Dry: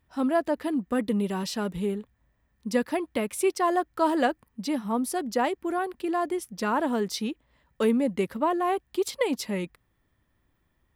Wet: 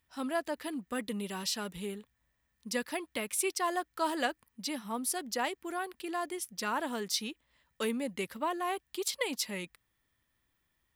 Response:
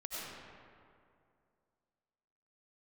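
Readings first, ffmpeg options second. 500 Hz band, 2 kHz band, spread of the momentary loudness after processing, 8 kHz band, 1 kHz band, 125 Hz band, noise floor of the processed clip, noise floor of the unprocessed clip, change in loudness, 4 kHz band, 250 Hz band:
-10.0 dB, -3.0 dB, 7 LU, +2.0 dB, -7.5 dB, -11.0 dB, -79 dBFS, -72 dBFS, -7.0 dB, +1.0 dB, -11.0 dB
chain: -af "tiltshelf=f=1400:g=-7,volume=0.596"

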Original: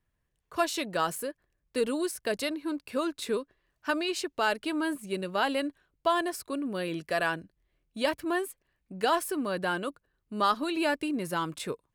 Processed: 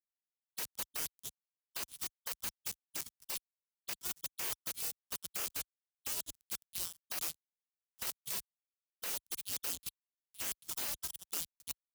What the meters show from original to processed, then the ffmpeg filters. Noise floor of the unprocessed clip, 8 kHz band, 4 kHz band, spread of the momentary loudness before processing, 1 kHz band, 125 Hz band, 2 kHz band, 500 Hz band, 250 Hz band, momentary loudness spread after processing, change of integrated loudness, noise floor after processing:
-79 dBFS, +2.0 dB, -7.5 dB, 10 LU, -22.5 dB, -17.0 dB, -16.5 dB, -26.5 dB, -28.5 dB, 7 LU, -8.5 dB, under -85 dBFS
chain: -filter_complex "[0:a]afftfilt=real='real(if(lt(b,272),68*(eq(floor(b/68),0)*1+eq(floor(b/68),1)*3+eq(floor(b/68),2)*0+eq(floor(b/68),3)*2)+mod(b,68),b),0)':imag='imag(if(lt(b,272),68*(eq(floor(b/68),0)*1+eq(floor(b/68),1)*3+eq(floor(b/68),2)*0+eq(floor(b/68),3)*2)+mod(b,68),b),0)':win_size=2048:overlap=0.75,acrossover=split=82|190|640|1300[s0][s1][s2][s3][s4];[s0]acompressor=threshold=0.00501:ratio=4[s5];[s1]acompressor=threshold=0.00251:ratio=4[s6];[s2]acompressor=threshold=0.00631:ratio=4[s7];[s3]acompressor=threshold=0.00447:ratio=4[s8];[s4]acompressor=threshold=0.0224:ratio=4[s9];[s5][s6][s7][s8][s9]amix=inputs=5:normalize=0,acrusher=bits=4:mix=0:aa=0.000001,acompressor=threshold=0.02:ratio=16,agate=range=0.02:threshold=0.0126:ratio=16:detection=peak,highpass=51,bass=f=250:g=14,treble=f=4000:g=13,afftfilt=real='re*lt(hypot(re,im),0.0141)':imag='im*lt(hypot(re,im),0.0141)':win_size=1024:overlap=0.75,volume=1.78"

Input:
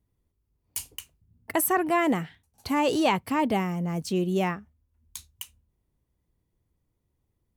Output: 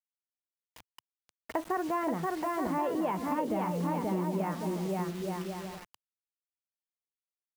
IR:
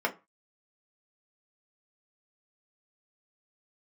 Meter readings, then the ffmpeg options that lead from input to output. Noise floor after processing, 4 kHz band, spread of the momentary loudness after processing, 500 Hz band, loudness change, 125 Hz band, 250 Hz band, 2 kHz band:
under -85 dBFS, -12.5 dB, 7 LU, -4.5 dB, -6.0 dB, -3.5 dB, -5.0 dB, -10.0 dB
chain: -filter_complex "[0:a]lowpass=1400,aecho=1:1:530|874.5|1098|1244|1339:0.631|0.398|0.251|0.158|0.1,asplit=2[s0][s1];[1:a]atrim=start_sample=2205[s2];[s1][s2]afir=irnorm=-1:irlink=0,volume=0.126[s3];[s0][s3]amix=inputs=2:normalize=0,acrusher=bits=6:mix=0:aa=0.000001,equalizer=f=110:w=3:g=-8,acompressor=threshold=0.0631:ratio=6,volume=0.668"

